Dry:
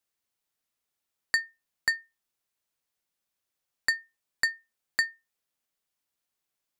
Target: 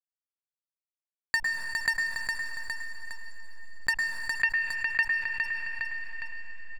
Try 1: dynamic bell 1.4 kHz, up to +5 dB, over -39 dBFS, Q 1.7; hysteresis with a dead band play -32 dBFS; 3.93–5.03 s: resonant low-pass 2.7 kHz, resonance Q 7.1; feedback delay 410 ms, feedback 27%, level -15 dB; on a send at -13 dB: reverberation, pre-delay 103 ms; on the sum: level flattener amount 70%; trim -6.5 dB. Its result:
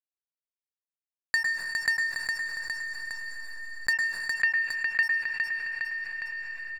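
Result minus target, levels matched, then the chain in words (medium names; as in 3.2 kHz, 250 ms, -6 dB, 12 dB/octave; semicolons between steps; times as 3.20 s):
hysteresis with a dead band: distortion -8 dB
dynamic bell 1.4 kHz, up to +5 dB, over -39 dBFS, Q 1.7; hysteresis with a dead band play -22.5 dBFS; 3.93–5.03 s: resonant low-pass 2.7 kHz, resonance Q 7.1; feedback delay 410 ms, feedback 27%, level -15 dB; on a send at -13 dB: reverberation, pre-delay 103 ms; on the sum: level flattener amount 70%; trim -6.5 dB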